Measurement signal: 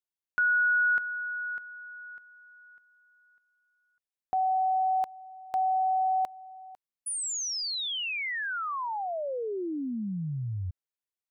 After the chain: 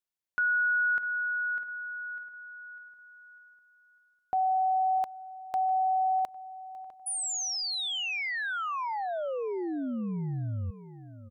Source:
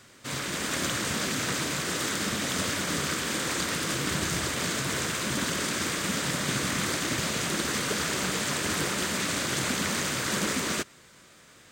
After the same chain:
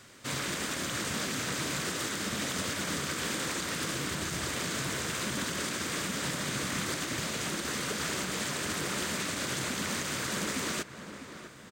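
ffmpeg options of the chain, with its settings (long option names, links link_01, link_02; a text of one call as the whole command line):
ffmpeg -i in.wav -filter_complex "[0:a]asplit=2[link_01][link_02];[link_02]adelay=652,lowpass=frequency=2200:poles=1,volume=-15dB,asplit=2[link_03][link_04];[link_04]adelay=652,lowpass=frequency=2200:poles=1,volume=0.46,asplit=2[link_05][link_06];[link_06]adelay=652,lowpass=frequency=2200:poles=1,volume=0.46,asplit=2[link_07][link_08];[link_08]adelay=652,lowpass=frequency=2200:poles=1,volume=0.46[link_09];[link_03][link_05][link_07][link_09]amix=inputs=4:normalize=0[link_10];[link_01][link_10]amix=inputs=2:normalize=0,alimiter=limit=-23dB:level=0:latency=1:release=192" out.wav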